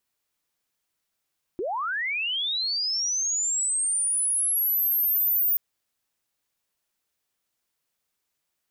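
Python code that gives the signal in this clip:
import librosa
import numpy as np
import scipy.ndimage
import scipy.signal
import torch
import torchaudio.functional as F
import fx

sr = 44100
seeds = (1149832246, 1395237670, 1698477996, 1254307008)

y = fx.chirp(sr, length_s=3.98, from_hz=320.0, to_hz=15000.0, law='linear', from_db=-26.0, to_db=-19.5)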